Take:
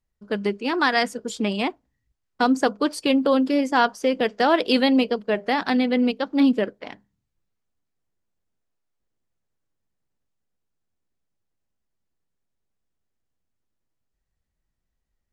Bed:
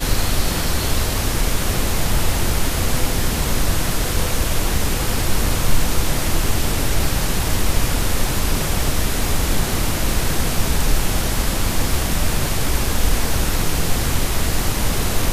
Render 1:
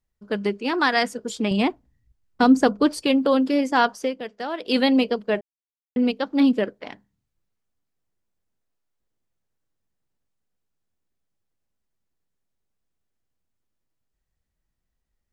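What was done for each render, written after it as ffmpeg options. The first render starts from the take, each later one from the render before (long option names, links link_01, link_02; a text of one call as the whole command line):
ffmpeg -i in.wav -filter_complex "[0:a]asettb=1/sr,asplit=3[link_01][link_02][link_03];[link_01]atrim=end=1.514[link_04];[link_02]atrim=start=1.51:end=3.03,asetpts=PTS-STARTPTS,afade=type=in:duration=0.004:curve=qsin,afade=type=out:start_time=1.516:duration=0.004:curve=qsin,lowshelf=frequency=240:gain=11.5[link_05];[link_03]atrim=start=3.026[link_06];[link_04][link_05]acrossfade=duration=0.004:curve1=hsin:curve2=qsin[link_07];[link_07][link_06]acrossfade=duration=0.004:curve1=qsin:curve2=hsin,asplit=5[link_08][link_09][link_10][link_11][link_12];[link_08]atrim=end=4.15,asetpts=PTS-STARTPTS,afade=type=out:start_time=4:duration=0.15:silence=0.281838[link_13];[link_09]atrim=start=4.15:end=4.63,asetpts=PTS-STARTPTS,volume=-11dB[link_14];[link_10]atrim=start=4.63:end=5.41,asetpts=PTS-STARTPTS,afade=type=in:duration=0.15:silence=0.281838,afade=type=out:start_time=0.776:duration=0.004:curve=hsin[link_15];[link_11]atrim=start=5.41:end=5.96,asetpts=PTS-STARTPTS,volume=0[link_16];[link_12]atrim=start=5.96,asetpts=PTS-STARTPTS,afade=type=in:duration=0.004:curve=hsin[link_17];[link_13][link_14][link_15][link_16][link_17]concat=n=5:v=0:a=1" out.wav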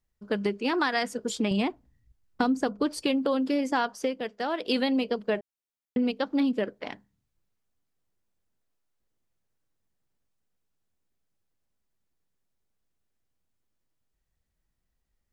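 ffmpeg -i in.wav -af "acompressor=threshold=-23dB:ratio=5" out.wav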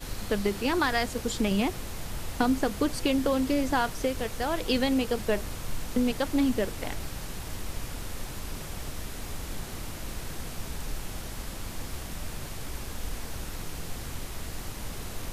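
ffmpeg -i in.wav -i bed.wav -filter_complex "[1:a]volume=-17.5dB[link_01];[0:a][link_01]amix=inputs=2:normalize=0" out.wav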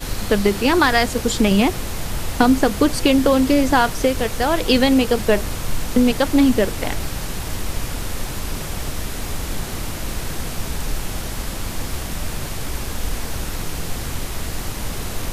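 ffmpeg -i in.wav -af "volume=10.5dB" out.wav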